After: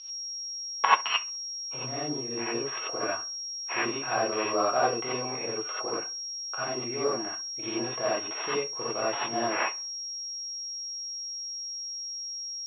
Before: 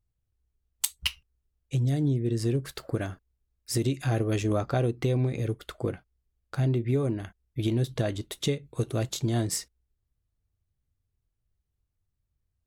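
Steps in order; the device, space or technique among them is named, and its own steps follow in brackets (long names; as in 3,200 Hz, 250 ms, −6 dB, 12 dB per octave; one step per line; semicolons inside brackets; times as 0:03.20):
toy sound module (linearly interpolated sample-rate reduction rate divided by 6×; switching amplifier with a slow clock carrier 5,600 Hz; loudspeaker in its box 660–4,200 Hz, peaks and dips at 750 Hz +3 dB, 1,100 Hz +7 dB, 1,800 Hz −4 dB, 2,700 Hz +6 dB)
bucket-brigade delay 66 ms, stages 1,024, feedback 31%, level −20 dB
reverb whose tail is shaped and stops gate 110 ms rising, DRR −8 dB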